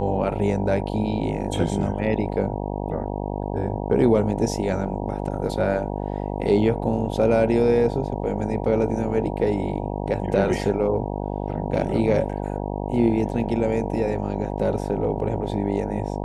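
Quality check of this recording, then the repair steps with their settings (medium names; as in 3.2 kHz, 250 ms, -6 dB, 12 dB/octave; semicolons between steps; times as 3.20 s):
buzz 50 Hz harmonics 19 -28 dBFS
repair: de-hum 50 Hz, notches 19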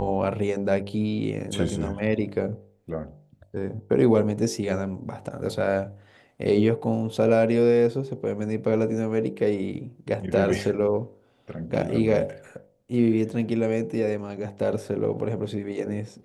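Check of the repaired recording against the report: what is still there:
nothing left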